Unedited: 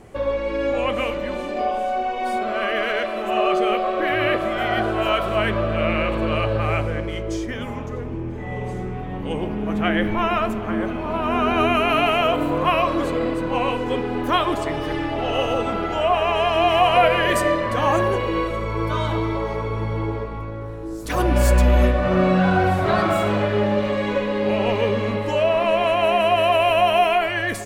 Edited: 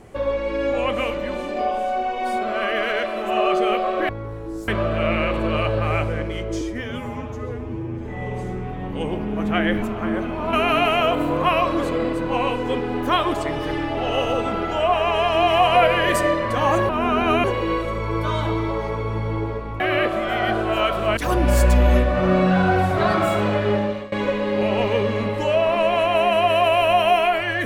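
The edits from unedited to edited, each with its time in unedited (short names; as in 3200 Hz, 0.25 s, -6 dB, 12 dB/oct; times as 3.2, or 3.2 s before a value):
4.09–5.46 swap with 20.46–21.05
7.39–8.35 stretch 1.5×
10.12–10.48 cut
11.19–11.74 move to 18.1
23.63–24 fade out, to -20 dB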